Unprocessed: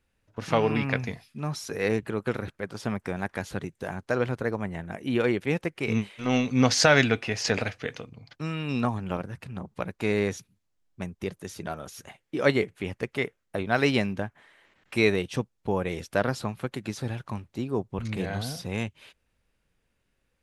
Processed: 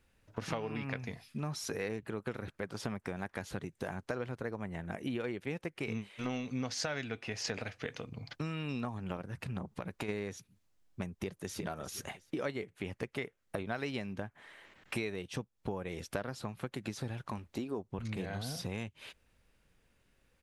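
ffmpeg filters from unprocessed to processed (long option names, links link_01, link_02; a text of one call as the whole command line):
ffmpeg -i in.wav -filter_complex "[0:a]asplit=3[link_01][link_02][link_03];[link_01]afade=type=out:start_time=9.67:duration=0.02[link_04];[link_02]acompressor=threshold=-34dB:ratio=6:attack=3.2:release=140:knee=1:detection=peak,afade=type=in:start_time=9.67:duration=0.02,afade=type=out:start_time=10.08:duration=0.02[link_05];[link_03]afade=type=in:start_time=10.08:duration=0.02[link_06];[link_04][link_05][link_06]amix=inputs=3:normalize=0,asplit=2[link_07][link_08];[link_08]afade=type=in:start_time=11.13:duration=0.01,afade=type=out:start_time=11.58:duration=0.01,aecho=0:1:360|720:0.211349|0.0422698[link_09];[link_07][link_09]amix=inputs=2:normalize=0,asettb=1/sr,asplit=3[link_10][link_11][link_12];[link_10]atrim=end=17.304[link_13];[link_11]atrim=start=17.3:end=17.88,asetpts=PTS-STARTPTS,afade=type=in:duration=0.004:curve=qsin,afade=type=out:start_time=0.576:duration=0.004:curve=qsin,equalizer=frequency=130:width=2.8:gain=-11.5[link_14];[link_12]atrim=start=17.876[link_15];[link_13][link_14]acrossfade=duration=0.004:curve1=hsin:curve2=qsin[link_16];[link_16][link_15]acrossfade=duration=0.004:curve1=qsin:curve2=hsin,acompressor=threshold=-39dB:ratio=6,volume=3.5dB" out.wav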